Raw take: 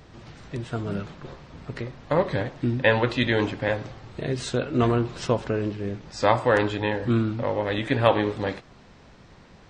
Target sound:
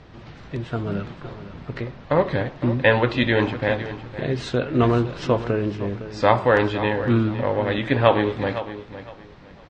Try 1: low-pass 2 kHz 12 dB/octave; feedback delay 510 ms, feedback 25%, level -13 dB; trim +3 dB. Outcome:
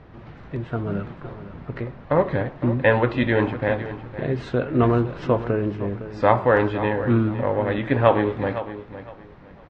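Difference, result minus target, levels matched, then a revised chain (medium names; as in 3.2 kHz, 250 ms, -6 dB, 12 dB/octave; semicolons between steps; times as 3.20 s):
4 kHz band -8.0 dB
low-pass 4.2 kHz 12 dB/octave; feedback delay 510 ms, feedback 25%, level -13 dB; trim +3 dB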